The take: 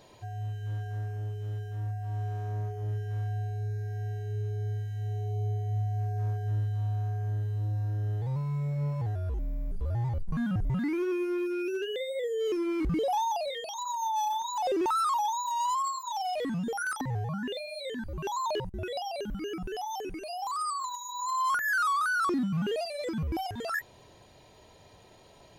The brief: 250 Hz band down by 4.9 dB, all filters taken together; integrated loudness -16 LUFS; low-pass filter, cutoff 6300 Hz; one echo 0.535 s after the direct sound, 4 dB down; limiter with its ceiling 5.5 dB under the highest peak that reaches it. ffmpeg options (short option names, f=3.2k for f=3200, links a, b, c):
-af "lowpass=6.3k,equalizer=f=250:t=o:g=-8,alimiter=level_in=3.5dB:limit=-24dB:level=0:latency=1,volume=-3.5dB,aecho=1:1:535:0.631,volume=16dB"